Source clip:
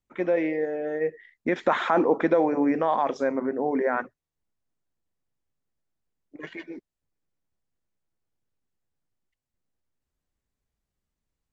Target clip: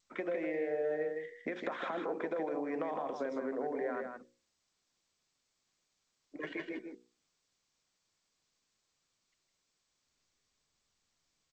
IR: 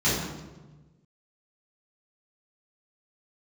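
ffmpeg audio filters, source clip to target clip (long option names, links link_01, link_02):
-filter_complex "[0:a]acompressor=threshold=-27dB:ratio=6,bandreject=frequency=60:width_type=h:width=6,bandreject=frequency=120:width_type=h:width=6,bandreject=frequency=180:width_type=h:width=6,bandreject=frequency=240:width_type=h:width=6,bandreject=frequency=300:width_type=h:width=6,bandreject=frequency=360:width_type=h:width=6,bandreject=frequency=420:width_type=h:width=6,bandreject=frequency=480:width_type=h:width=6,bandreject=frequency=540:width_type=h:width=6,acrossover=split=150|460[link_01][link_02][link_03];[link_01]acompressor=threshold=-58dB:ratio=4[link_04];[link_02]acompressor=threshold=-43dB:ratio=4[link_05];[link_03]acompressor=threshold=-40dB:ratio=4[link_06];[link_04][link_05][link_06]amix=inputs=3:normalize=0,lowpass=4700,lowshelf=frequency=95:gain=-12,bandreject=frequency=870:width=14,asplit=2[link_07][link_08];[link_08]aecho=0:1:158:0.531[link_09];[link_07][link_09]amix=inputs=2:normalize=0,adynamicequalizer=threshold=0.00141:dfrequency=520:dqfactor=1.1:tfrequency=520:tqfactor=1.1:attack=5:release=100:ratio=0.375:range=1.5:mode=boostabove:tftype=bell" -ar 16000 -c:a g722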